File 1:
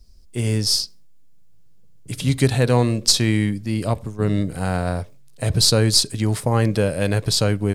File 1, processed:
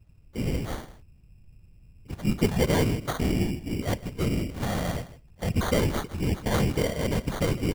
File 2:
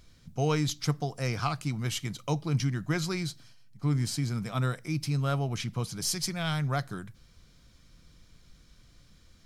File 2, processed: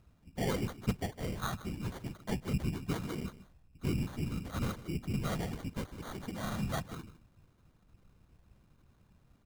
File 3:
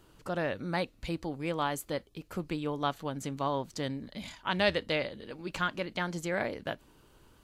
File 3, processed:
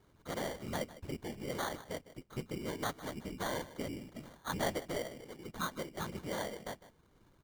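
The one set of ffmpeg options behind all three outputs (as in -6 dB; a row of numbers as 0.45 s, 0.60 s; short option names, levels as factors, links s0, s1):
-af "equalizer=f=6200:w=0.87:g=-12,afftfilt=real='hypot(re,im)*cos(2*PI*random(0))':imag='hypot(re,im)*sin(2*PI*random(1))':win_size=512:overlap=0.75,aecho=1:1:155:0.15,acrusher=samples=17:mix=1:aa=0.000001"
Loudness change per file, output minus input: -8.0 LU, -7.0 LU, -6.5 LU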